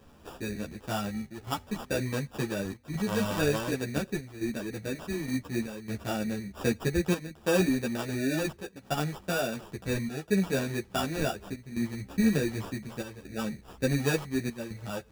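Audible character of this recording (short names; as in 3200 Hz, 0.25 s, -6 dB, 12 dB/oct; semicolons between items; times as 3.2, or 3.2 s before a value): chopped level 0.68 Hz, depth 65%, duty 85%; aliases and images of a low sample rate 2100 Hz, jitter 0%; a shimmering, thickened sound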